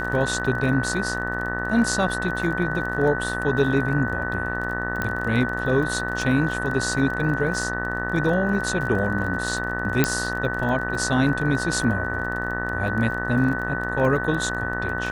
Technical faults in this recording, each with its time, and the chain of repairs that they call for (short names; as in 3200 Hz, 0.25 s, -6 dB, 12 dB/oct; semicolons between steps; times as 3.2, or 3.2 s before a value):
buzz 60 Hz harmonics 32 -30 dBFS
crackle 28/s -30 dBFS
tone 1500 Hz -28 dBFS
5.02 pop -11 dBFS
10.04 pop -3 dBFS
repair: de-click; de-hum 60 Hz, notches 32; notch 1500 Hz, Q 30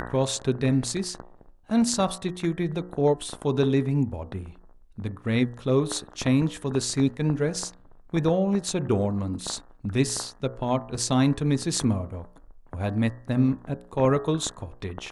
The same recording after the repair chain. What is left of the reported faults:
none